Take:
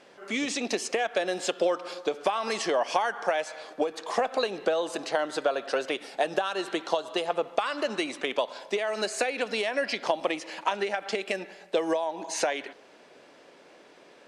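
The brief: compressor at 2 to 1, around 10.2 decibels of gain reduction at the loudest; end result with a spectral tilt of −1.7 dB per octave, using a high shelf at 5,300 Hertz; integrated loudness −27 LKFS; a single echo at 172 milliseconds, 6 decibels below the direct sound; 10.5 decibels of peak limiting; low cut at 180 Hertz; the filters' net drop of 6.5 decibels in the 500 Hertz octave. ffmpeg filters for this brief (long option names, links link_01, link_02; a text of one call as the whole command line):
ffmpeg -i in.wav -af "highpass=180,equalizer=frequency=500:width_type=o:gain=-8,highshelf=frequency=5300:gain=-5,acompressor=threshold=-44dB:ratio=2,alimiter=level_in=9.5dB:limit=-24dB:level=0:latency=1,volume=-9.5dB,aecho=1:1:172:0.501,volume=16.5dB" out.wav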